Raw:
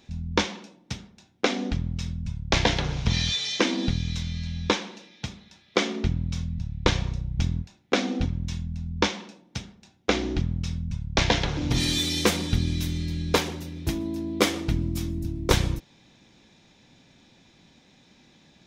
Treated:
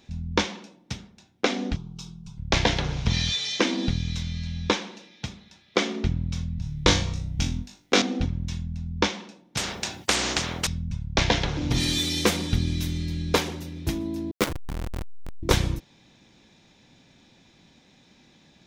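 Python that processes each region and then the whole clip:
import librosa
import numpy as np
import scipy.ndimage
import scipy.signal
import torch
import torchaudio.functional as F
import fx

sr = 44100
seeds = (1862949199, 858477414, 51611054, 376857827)

y = fx.chain(x, sr, fx.low_shelf(hz=210.0, db=-8.5),
    fx.fixed_phaser(hz=380.0, stages=8), at=(1.76, 2.38))
y = fx.chain(y, sr, fx.high_shelf(hz=4000.0, db=10.0),
    fx.room_flutter(wall_m=3.5, rt60_s=0.26), at=(6.62, 8.02))
y = fx.chain(y, sr, fx.highpass(hz=63.0, slope=12),
    fx.spectral_comp(ratio=4.0), at=(9.57, 10.67))
y = fx.chain(y, sr, fx.delta_hold(step_db=-17.0),
    fx.level_steps(step_db=10), at=(14.31, 15.43))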